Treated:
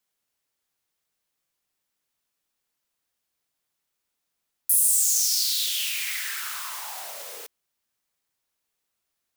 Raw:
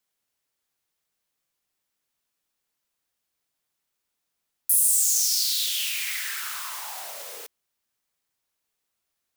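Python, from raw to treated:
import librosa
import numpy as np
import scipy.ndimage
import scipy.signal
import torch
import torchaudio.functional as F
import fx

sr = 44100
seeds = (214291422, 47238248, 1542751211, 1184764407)

y = fx.low_shelf(x, sr, hz=400.0, db=9.5, at=(4.81, 5.5))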